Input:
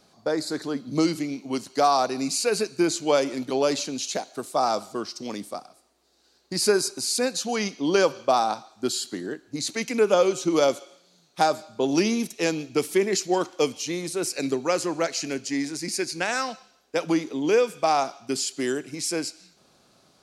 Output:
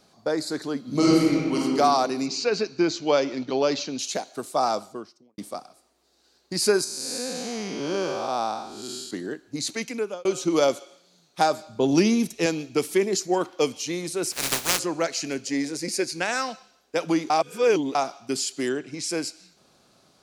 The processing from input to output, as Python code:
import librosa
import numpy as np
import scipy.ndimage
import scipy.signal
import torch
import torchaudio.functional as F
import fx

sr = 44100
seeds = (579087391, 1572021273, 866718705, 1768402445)

y = fx.reverb_throw(x, sr, start_s=0.81, length_s=0.8, rt60_s=2.0, drr_db=-4.5)
y = fx.steep_lowpass(y, sr, hz=6000.0, slope=36, at=(2.26, 3.99))
y = fx.studio_fade_out(y, sr, start_s=4.63, length_s=0.75)
y = fx.spec_blur(y, sr, span_ms=274.0, at=(6.84, 9.11))
y = fx.low_shelf(y, sr, hz=160.0, db=12.0, at=(11.66, 12.46))
y = fx.peak_eq(y, sr, hz=fx.line((13.03, 1400.0), (13.6, 9500.0)), db=-10.0, octaves=0.77, at=(13.03, 13.6), fade=0.02)
y = fx.spec_flatten(y, sr, power=0.19, at=(14.31, 14.78), fade=0.02)
y = fx.peak_eq(y, sr, hz=500.0, db=13.0, octaves=0.36, at=(15.47, 16.06))
y = fx.lowpass(y, sr, hz=fx.line((18.68, 3800.0), (19.08, 8300.0)), slope=12, at=(18.68, 19.08), fade=0.02)
y = fx.edit(y, sr, fx.fade_out_span(start_s=9.7, length_s=0.55),
    fx.reverse_span(start_s=17.3, length_s=0.65), tone=tone)